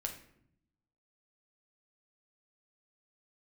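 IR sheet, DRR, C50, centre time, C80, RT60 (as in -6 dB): 2.5 dB, 8.5 dB, 17 ms, 12.0 dB, 0.70 s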